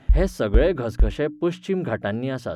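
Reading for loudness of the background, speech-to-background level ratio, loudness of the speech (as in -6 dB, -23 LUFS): -26.0 LUFS, 1.0 dB, -25.0 LUFS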